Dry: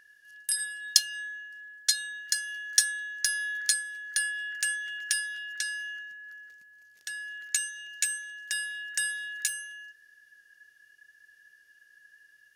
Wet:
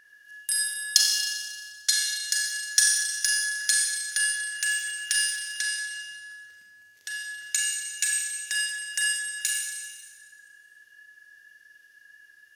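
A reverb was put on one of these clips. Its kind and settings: Schroeder reverb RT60 1.6 s, combs from 30 ms, DRR -1.5 dB; trim +1 dB

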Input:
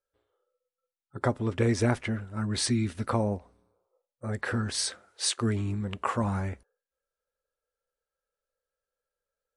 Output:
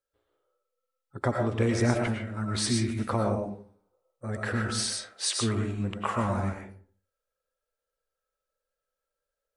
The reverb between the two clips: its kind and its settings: algorithmic reverb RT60 0.46 s, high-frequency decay 0.55×, pre-delay 70 ms, DRR 1.5 dB; trim -1 dB

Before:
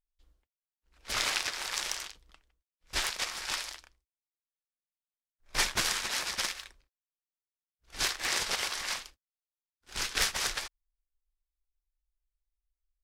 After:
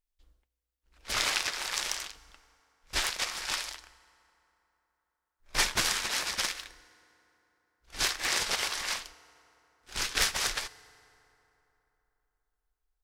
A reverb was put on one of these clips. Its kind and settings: FDN reverb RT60 3.4 s, high-frequency decay 0.55×, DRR 18 dB; trim +1.5 dB

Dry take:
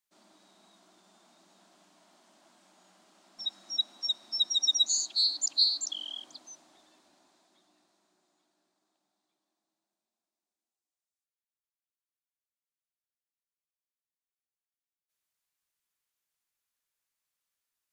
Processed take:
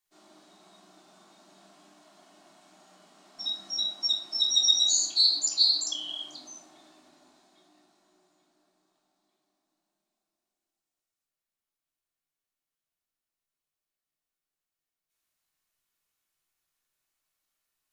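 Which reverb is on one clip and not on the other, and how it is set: simulated room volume 630 m³, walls furnished, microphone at 3.4 m

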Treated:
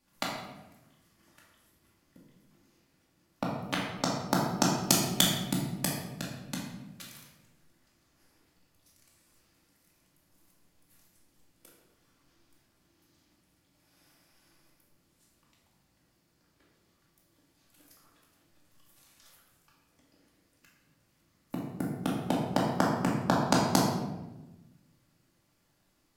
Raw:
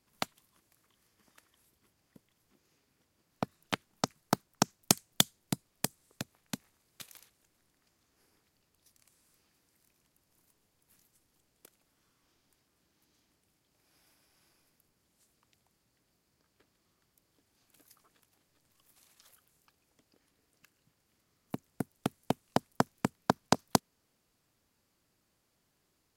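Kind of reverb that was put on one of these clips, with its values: simulated room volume 510 m³, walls mixed, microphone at 2.4 m; trim -2 dB

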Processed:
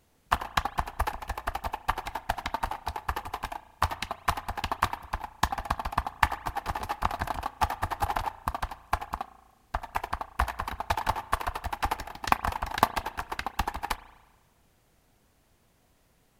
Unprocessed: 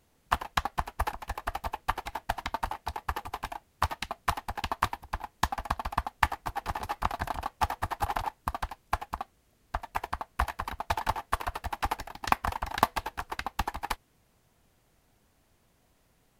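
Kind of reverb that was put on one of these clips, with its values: spring tank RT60 1.2 s, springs 35 ms, chirp 55 ms, DRR 15.5 dB; trim +1.5 dB

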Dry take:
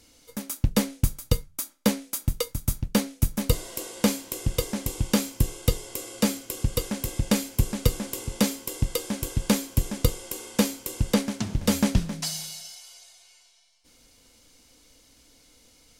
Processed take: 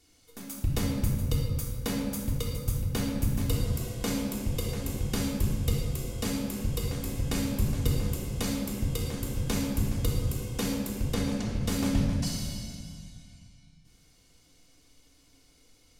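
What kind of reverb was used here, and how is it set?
simulated room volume 2700 m³, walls mixed, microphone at 3.4 m; trim -10 dB

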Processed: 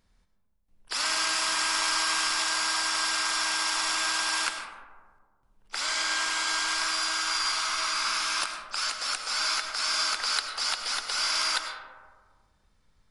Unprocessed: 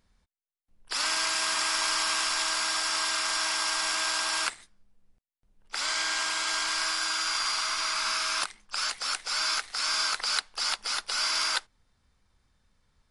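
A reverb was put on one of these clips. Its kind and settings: algorithmic reverb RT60 1.7 s, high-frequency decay 0.3×, pre-delay 60 ms, DRR 5.5 dB

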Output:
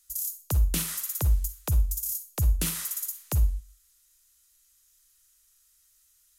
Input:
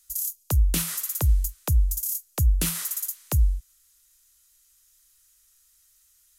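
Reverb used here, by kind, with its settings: Schroeder reverb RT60 0.35 s, DRR 10 dB; trim -3 dB

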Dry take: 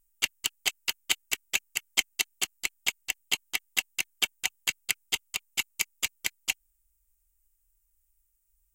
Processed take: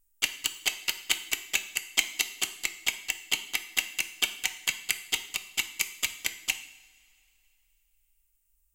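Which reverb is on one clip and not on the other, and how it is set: two-slope reverb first 0.66 s, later 2.8 s, from -18 dB, DRR 8.5 dB

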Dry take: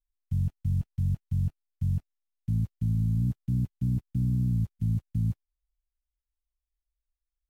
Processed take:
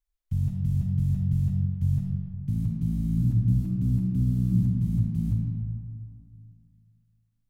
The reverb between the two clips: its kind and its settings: algorithmic reverb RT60 2.3 s, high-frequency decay 0.45×, pre-delay 5 ms, DRR -0.5 dB; trim +1 dB

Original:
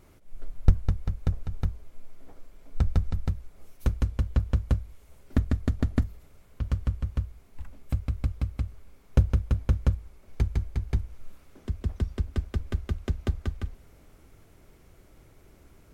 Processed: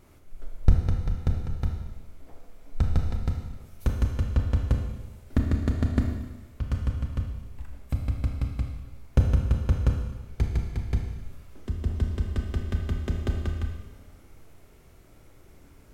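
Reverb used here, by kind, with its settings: Schroeder reverb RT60 1.2 s, combs from 25 ms, DRR 2.5 dB

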